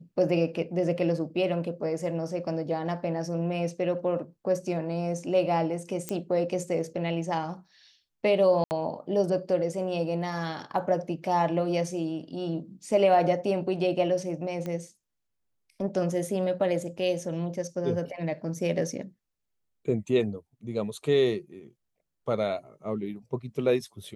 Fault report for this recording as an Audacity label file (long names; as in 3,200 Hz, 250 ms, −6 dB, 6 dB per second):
6.090000	6.090000	click −15 dBFS
8.640000	8.710000	drop-out 69 ms
14.660000	14.660000	click −22 dBFS